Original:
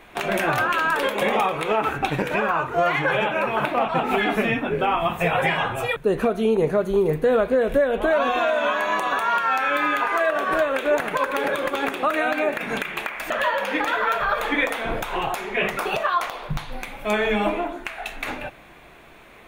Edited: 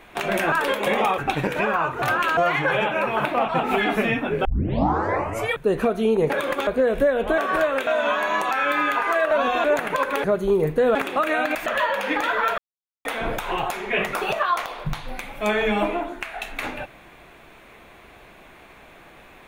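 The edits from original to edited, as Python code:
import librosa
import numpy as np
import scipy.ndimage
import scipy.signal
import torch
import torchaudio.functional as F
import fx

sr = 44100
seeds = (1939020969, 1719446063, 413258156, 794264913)

y = fx.edit(x, sr, fx.move(start_s=0.52, length_s=0.35, to_s=2.77),
    fx.cut(start_s=1.53, length_s=0.4),
    fx.tape_start(start_s=4.85, length_s=1.09),
    fx.swap(start_s=6.7, length_s=0.71, other_s=11.45, other_length_s=0.37),
    fx.swap(start_s=8.12, length_s=0.33, other_s=10.36, other_length_s=0.49),
    fx.cut(start_s=9.09, length_s=0.47),
    fx.cut(start_s=12.42, length_s=0.77),
    fx.silence(start_s=14.22, length_s=0.47), tone=tone)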